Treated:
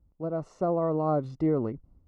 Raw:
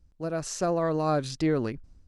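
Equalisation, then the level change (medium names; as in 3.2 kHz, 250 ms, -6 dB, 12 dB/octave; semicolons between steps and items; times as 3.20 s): Savitzky-Golay filter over 65 samples; high-pass 48 Hz 6 dB/octave; 0.0 dB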